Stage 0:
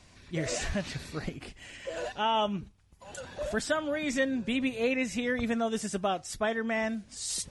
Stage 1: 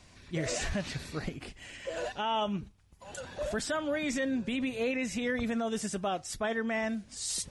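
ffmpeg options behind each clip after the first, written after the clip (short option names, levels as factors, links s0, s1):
-af "alimiter=limit=0.0708:level=0:latency=1:release=26"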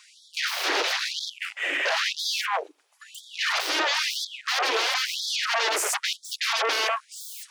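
-af "aeval=exprs='0.075*sin(PI/2*7.94*val(0)/0.075)':c=same,afwtdn=0.0316,afftfilt=real='re*gte(b*sr/1024,270*pow(3300/270,0.5+0.5*sin(2*PI*1*pts/sr)))':imag='im*gte(b*sr/1024,270*pow(3300/270,0.5+0.5*sin(2*PI*1*pts/sr)))':win_size=1024:overlap=0.75,volume=1.41"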